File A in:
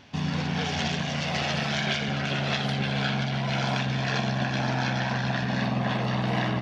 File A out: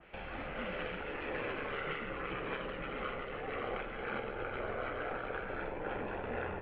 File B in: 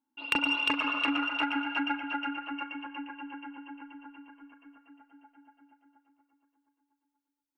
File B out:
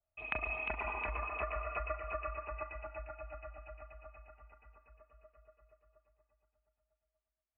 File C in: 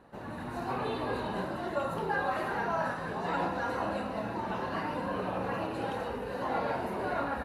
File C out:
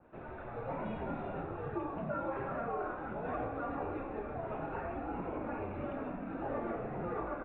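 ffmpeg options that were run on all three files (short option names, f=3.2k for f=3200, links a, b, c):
-af "acompressor=threshold=-32dB:ratio=2,highpass=f=290:t=q:w=0.5412,highpass=f=290:t=q:w=1.307,lowpass=f=3k:t=q:w=0.5176,lowpass=f=3k:t=q:w=0.7071,lowpass=f=3k:t=q:w=1.932,afreqshift=-230,adynamicequalizer=threshold=0.002:dfrequency=2100:dqfactor=0.7:tfrequency=2100:tqfactor=0.7:attack=5:release=100:ratio=0.375:range=3:mode=cutabove:tftype=highshelf,volume=-2.5dB"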